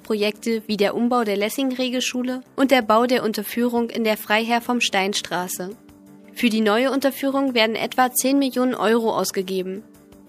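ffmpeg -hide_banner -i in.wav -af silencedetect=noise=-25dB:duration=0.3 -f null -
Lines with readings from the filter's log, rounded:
silence_start: 5.69
silence_end: 6.39 | silence_duration: 0.70
silence_start: 9.78
silence_end: 10.28 | silence_duration: 0.50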